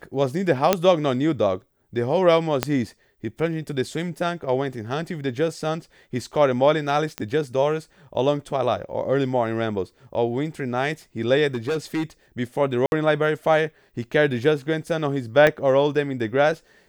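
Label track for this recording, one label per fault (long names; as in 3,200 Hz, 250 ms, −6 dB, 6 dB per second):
0.730000	0.730000	click −2 dBFS
2.630000	2.630000	click −5 dBFS
7.180000	7.180000	click −12 dBFS
11.540000	12.030000	clipping −20.5 dBFS
12.860000	12.920000	drop-out 61 ms
15.470000	15.470000	click −7 dBFS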